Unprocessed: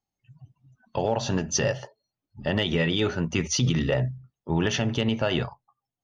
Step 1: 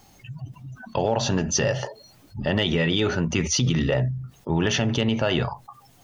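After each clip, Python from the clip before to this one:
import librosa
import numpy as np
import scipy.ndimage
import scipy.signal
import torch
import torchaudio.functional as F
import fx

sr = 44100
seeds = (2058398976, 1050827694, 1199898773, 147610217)

y = fx.env_flatten(x, sr, amount_pct=50)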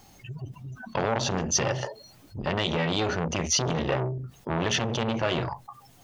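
y = fx.transformer_sat(x, sr, knee_hz=1100.0)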